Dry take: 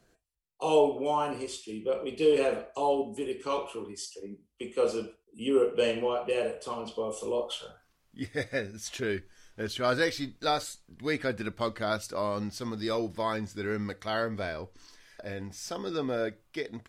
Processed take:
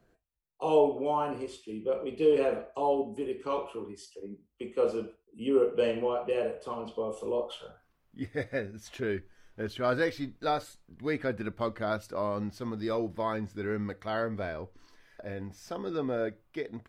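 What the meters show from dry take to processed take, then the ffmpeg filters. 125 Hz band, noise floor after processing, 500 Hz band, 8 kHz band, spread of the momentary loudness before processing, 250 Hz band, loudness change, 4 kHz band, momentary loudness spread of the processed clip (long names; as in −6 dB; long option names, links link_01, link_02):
0.0 dB, −71 dBFS, −0.5 dB, below −10 dB, 13 LU, 0.0 dB, −0.5 dB, −7.5 dB, 15 LU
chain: -af "equalizer=frequency=7100:width=0.42:gain=-12"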